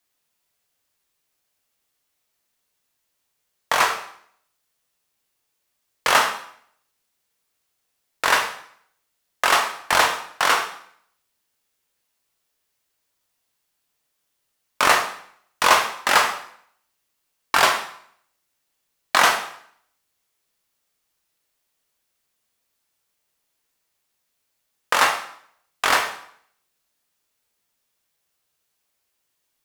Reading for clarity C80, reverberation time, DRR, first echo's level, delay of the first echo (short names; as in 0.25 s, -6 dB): 11.5 dB, 0.60 s, 2.5 dB, none, none